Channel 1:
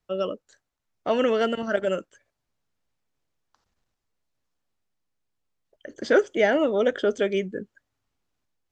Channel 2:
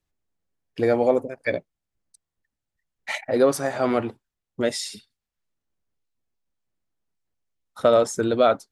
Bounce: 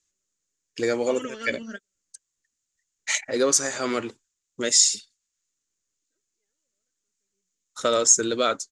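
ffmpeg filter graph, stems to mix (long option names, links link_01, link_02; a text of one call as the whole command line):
ffmpeg -i stem1.wav -i stem2.wav -filter_complex "[0:a]aphaser=in_gain=1:out_gain=1:delay=4.6:decay=0.66:speed=0.27:type=triangular,volume=-10.5dB[link_01];[1:a]bass=frequency=250:gain=-12,treble=frequency=4000:gain=4,volume=2dB,asplit=2[link_02][link_03];[link_03]apad=whole_len=388739[link_04];[link_01][link_04]sidechaingate=range=-55dB:threshold=-49dB:ratio=16:detection=peak[link_05];[link_05][link_02]amix=inputs=2:normalize=0,lowpass=frequency=6900:width_type=q:width=6,equalizer=frequency=720:width_type=o:width=0.83:gain=-13.5" out.wav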